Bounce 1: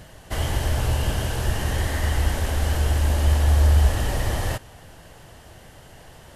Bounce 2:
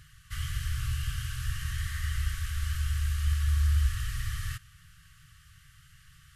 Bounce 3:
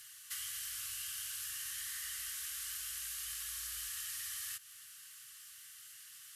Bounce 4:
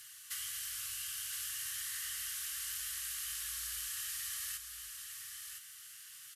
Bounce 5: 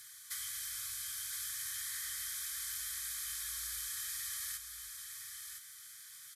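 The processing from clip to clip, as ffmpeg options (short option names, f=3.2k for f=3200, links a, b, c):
-af "afftfilt=real='re*(1-between(b*sr/4096,170,1100))':imag='im*(1-between(b*sr/4096,170,1100))':win_size=4096:overlap=0.75,volume=-8.5dB"
-af "afreqshift=-17,aderivative,acompressor=threshold=-51dB:ratio=4,volume=10.5dB"
-af "aecho=1:1:1013:0.447,volume=1dB"
-af "asuperstop=centerf=2800:order=8:qfactor=5.5"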